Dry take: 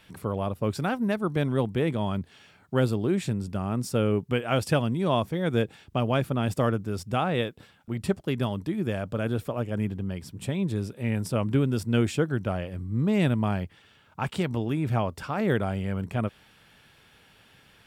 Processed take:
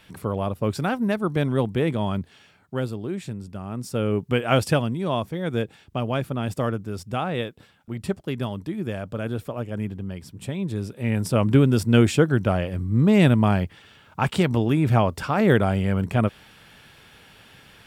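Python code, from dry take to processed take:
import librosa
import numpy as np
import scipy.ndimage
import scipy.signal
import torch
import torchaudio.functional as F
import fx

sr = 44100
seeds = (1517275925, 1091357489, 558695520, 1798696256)

y = fx.gain(x, sr, db=fx.line((2.17, 3.0), (2.91, -4.5), (3.64, -4.5), (4.52, 6.0), (4.99, -0.5), (10.62, -0.5), (11.49, 7.0)))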